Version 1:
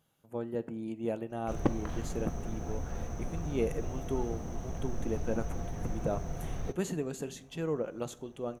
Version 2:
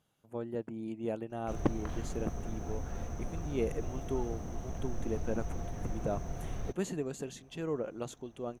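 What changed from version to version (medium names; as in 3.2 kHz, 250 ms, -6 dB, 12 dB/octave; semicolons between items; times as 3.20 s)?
speech: add low-pass 11 kHz; reverb: off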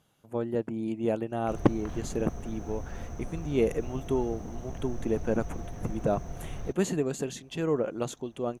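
speech +7.5 dB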